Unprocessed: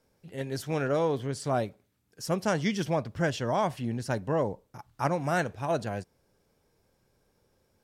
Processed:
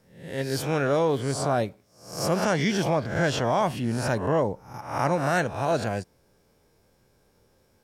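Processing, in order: spectral swells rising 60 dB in 0.53 s; in parallel at +2.5 dB: limiter -20.5 dBFS, peak gain reduction 8.5 dB; on the sum: gain -3 dB

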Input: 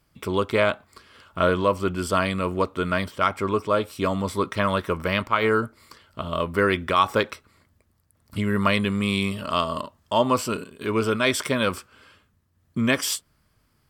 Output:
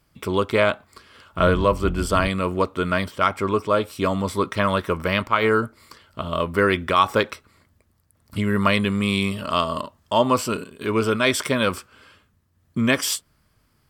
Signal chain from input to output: 1.38–2.28 octaver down 2 oct, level 0 dB; gain +2 dB

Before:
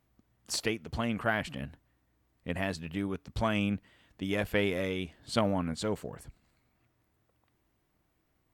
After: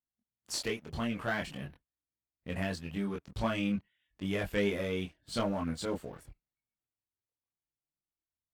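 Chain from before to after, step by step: sample leveller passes 2; spectral noise reduction 16 dB; chorus voices 4, 0.4 Hz, delay 23 ms, depth 3.5 ms; gain -6.5 dB

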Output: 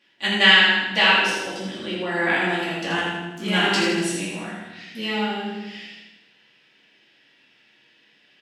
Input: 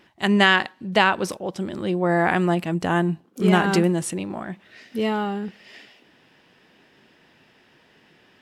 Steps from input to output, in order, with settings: gate -52 dBFS, range -6 dB; weighting filter D; on a send: feedback echo 80 ms, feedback 55%, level -5 dB; on the sum: shoebox room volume 200 m³, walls mixed, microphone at 2.4 m; gain -12 dB

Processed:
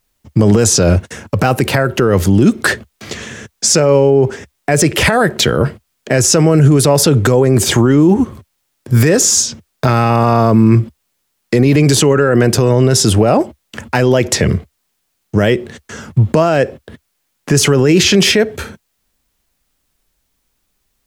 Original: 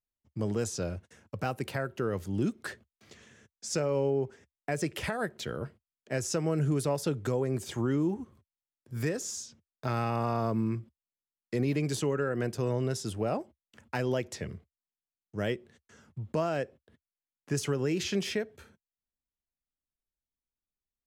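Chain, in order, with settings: maximiser +29 dB; gain -1 dB

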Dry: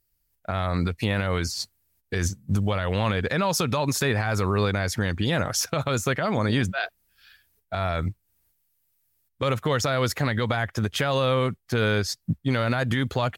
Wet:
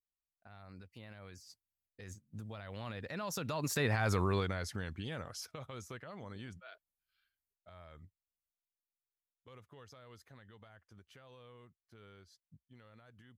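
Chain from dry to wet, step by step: Doppler pass-by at 4.05, 22 m/s, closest 6.3 m; gain -6.5 dB

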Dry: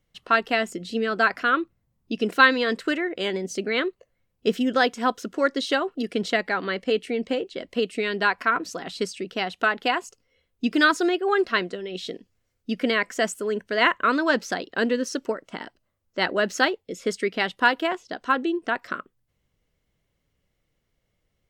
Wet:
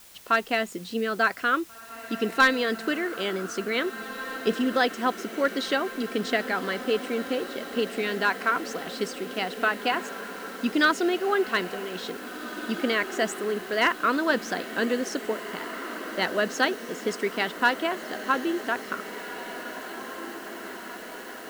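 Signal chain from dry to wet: one-sided clip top -11 dBFS; requantised 8-bit, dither triangular; diffused feedback echo 1.879 s, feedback 68%, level -12 dB; gain -2.5 dB

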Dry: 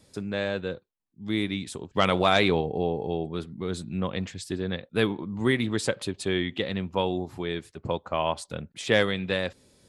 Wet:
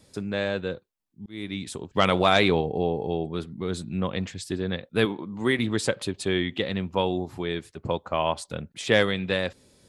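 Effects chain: 1.26–1.68 fade in; 5.05–5.59 HPF 220 Hz 6 dB/oct; gain +1.5 dB

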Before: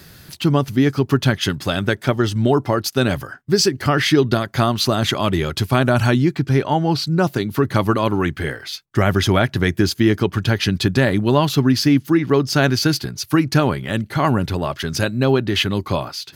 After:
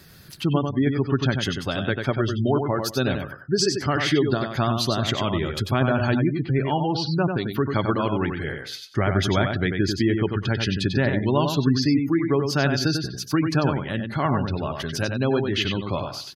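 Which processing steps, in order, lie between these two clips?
on a send: feedback echo 94 ms, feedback 21%, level -5.5 dB; on the sum: spectral gate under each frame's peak -30 dB strong; 6.24–7.85 bell 2900 Hz +6.5 dB 0.55 oct; gain -6 dB

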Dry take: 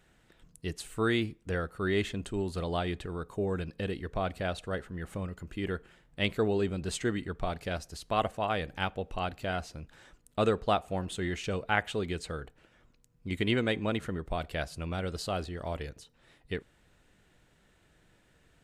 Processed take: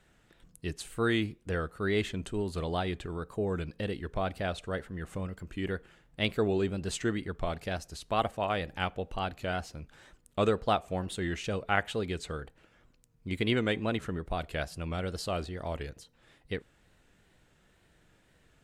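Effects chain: wow and flutter 80 cents

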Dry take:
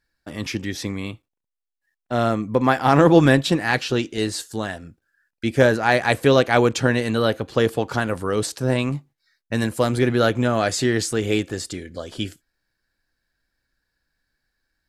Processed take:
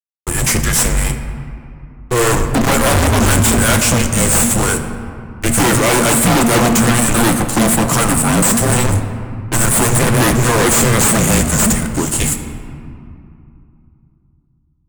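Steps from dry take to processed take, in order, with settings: resonant high shelf 6200 Hz +13 dB, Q 3; added harmonics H 8 -12 dB, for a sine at 2 dBFS; frequency shift -240 Hz; fuzz box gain 31 dB, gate -39 dBFS; on a send: reverb RT60 2.6 s, pre-delay 6 ms, DRR 6.5 dB; on the sum: gain +2 dB

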